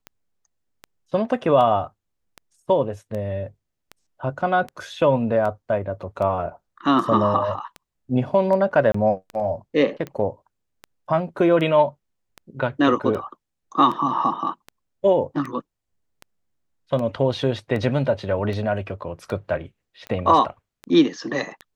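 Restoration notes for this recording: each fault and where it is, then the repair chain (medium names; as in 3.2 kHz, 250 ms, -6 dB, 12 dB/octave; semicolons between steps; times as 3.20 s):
tick 78 rpm -20 dBFS
8.92–8.94 s: dropout 24 ms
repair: de-click; interpolate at 8.92 s, 24 ms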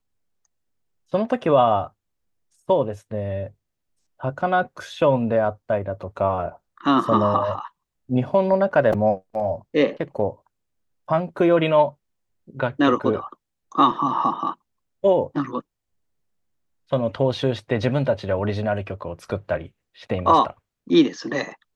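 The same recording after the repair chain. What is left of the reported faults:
nothing left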